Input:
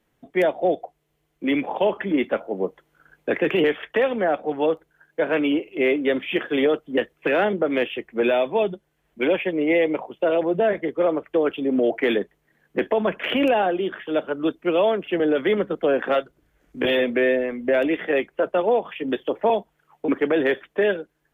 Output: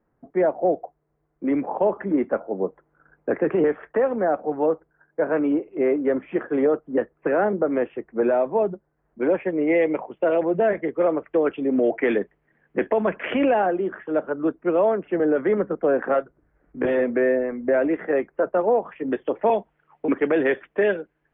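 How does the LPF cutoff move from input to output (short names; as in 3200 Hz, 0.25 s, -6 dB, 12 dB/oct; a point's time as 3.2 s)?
LPF 24 dB/oct
9.23 s 1500 Hz
9.86 s 2300 Hz
13.43 s 2300 Hz
13.85 s 1700 Hz
18.95 s 1700 Hz
19.36 s 2600 Hz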